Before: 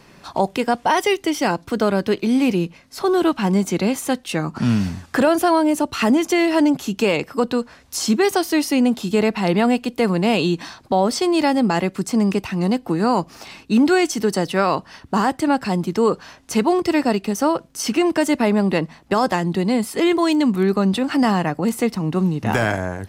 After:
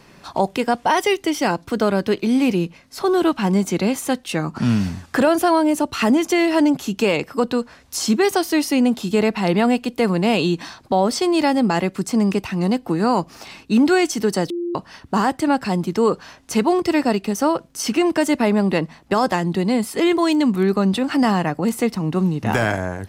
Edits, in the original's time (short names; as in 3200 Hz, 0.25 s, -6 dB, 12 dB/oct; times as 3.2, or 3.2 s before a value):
14.5–14.75 bleep 346 Hz -21.5 dBFS